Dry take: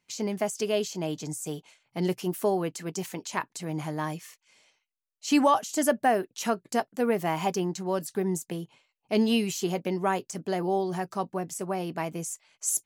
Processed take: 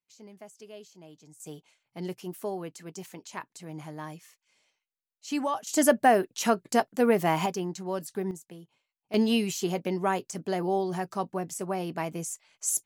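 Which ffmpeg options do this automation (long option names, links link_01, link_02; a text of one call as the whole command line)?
ffmpeg -i in.wav -af "asetnsamples=nb_out_samples=441:pad=0,asendcmd='1.4 volume volume -8dB;5.67 volume volume 3dB;7.46 volume volume -3.5dB;8.31 volume volume -12dB;9.14 volume volume -0.5dB',volume=-19dB" out.wav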